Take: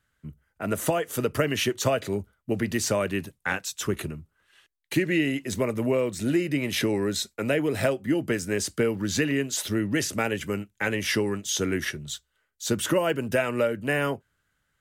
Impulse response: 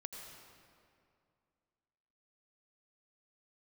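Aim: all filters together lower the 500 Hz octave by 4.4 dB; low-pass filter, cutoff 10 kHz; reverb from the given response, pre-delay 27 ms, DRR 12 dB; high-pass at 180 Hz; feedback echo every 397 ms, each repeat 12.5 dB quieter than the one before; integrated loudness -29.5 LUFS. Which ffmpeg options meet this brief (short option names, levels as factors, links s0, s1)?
-filter_complex "[0:a]highpass=180,lowpass=10000,equalizer=f=500:t=o:g=-5.5,aecho=1:1:397|794|1191:0.237|0.0569|0.0137,asplit=2[s0][s1];[1:a]atrim=start_sample=2205,adelay=27[s2];[s1][s2]afir=irnorm=-1:irlink=0,volume=0.335[s3];[s0][s3]amix=inputs=2:normalize=0,volume=0.944"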